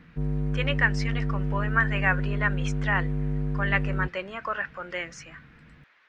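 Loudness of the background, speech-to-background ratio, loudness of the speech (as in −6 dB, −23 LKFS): −29.5 LKFS, 1.0 dB, −28.5 LKFS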